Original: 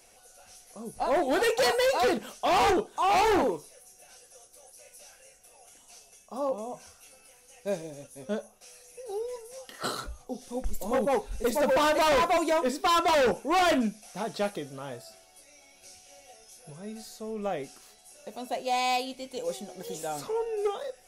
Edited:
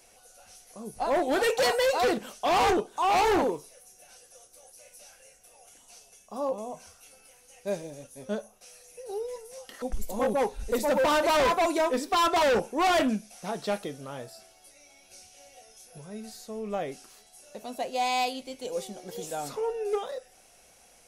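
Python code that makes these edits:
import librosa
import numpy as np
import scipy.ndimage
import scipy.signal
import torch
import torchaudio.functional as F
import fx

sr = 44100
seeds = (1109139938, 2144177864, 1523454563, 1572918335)

y = fx.edit(x, sr, fx.cut(start_s=9.82, length_s=0.72), tone=tone)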